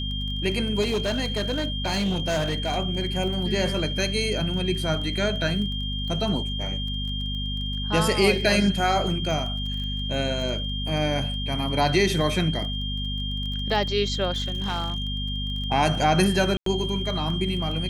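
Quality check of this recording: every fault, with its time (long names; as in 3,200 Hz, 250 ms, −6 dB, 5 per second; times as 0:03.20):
surface crackle 18 per second −32 dBFS
mains hum 50 Hz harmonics 5 −30 dBFS
whistle 3,200 Hz −31 dBFS
0:00.81–0:02.78: clipping −20.5 dBFS
0:14.31–0:15.04: clipping −22 dBFS
0:16.57–0:16.66: drop-out 93 ms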